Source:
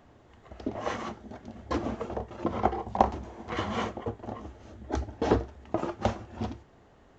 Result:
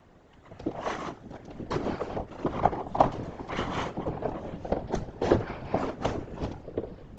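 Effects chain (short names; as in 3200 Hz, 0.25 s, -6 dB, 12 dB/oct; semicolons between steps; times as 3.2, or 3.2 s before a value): echoes that change speed 0.71 s, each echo -5 st, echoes 3, each echo -6 dB; whisperiser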